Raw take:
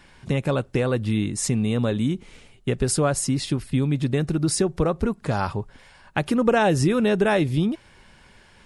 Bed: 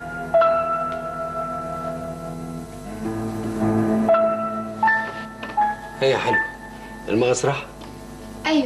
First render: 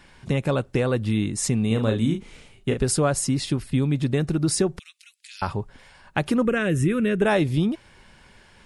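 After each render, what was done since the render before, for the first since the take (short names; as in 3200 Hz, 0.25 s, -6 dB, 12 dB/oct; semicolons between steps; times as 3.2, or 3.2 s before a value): 1.67–2.8 doubler 36 ms -6 dB; 4.79–5.42 steep high-pass 2400 Hz; 6.45–7.22 fixed phaser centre 2000 Hz, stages 4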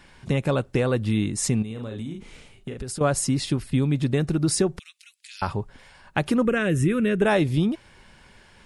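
1.62–3.01 compressor 8:1, threshold -29 dBFS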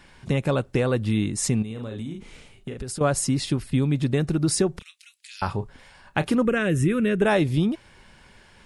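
4.72–6.35 doubler 31 ms -13 dB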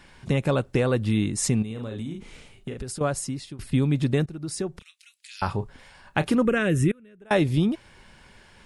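2.74–3.59 fade out, to -19 dB; 4.26–5.43 fade in, from -16.5 dB; 6.91–7.31 flipped gate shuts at -20 dBFS, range -29 dB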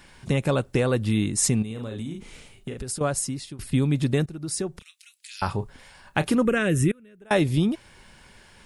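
high shelf 7000 Hz +8 dB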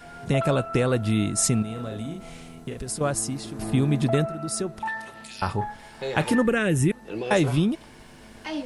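add bed -12.5 dB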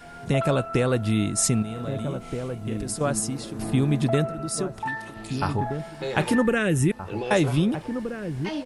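outdoor echo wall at 270 m, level -8 dB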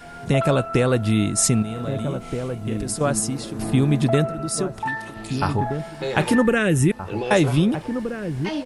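gain +3.5 dB; limiter -3 dBFS, peak gain reduction 0.5 dB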